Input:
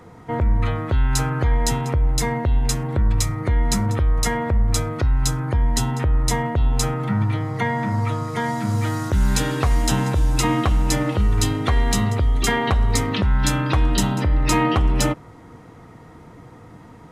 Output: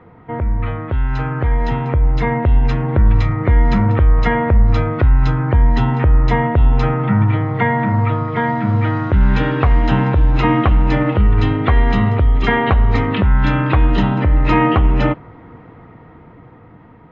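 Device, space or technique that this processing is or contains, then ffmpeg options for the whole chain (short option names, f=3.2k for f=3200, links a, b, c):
action camera in a waterproof case: -af "lowpass=f=2.8k:w=0.5412,lowpass=f=2.8k:w=1.3066,dynaudnorm=f=540:g=7:m=9dB" -ar 16000 -c:a aac -b:a 48k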